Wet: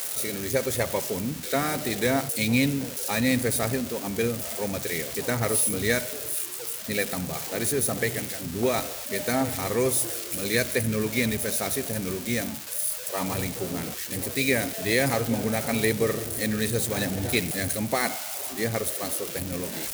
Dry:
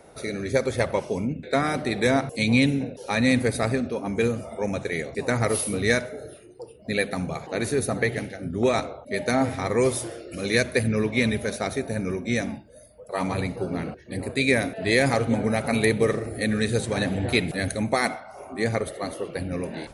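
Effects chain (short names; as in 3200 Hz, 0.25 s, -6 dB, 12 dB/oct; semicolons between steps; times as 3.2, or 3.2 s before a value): switching spikes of -18 dBFS; gain -3 dB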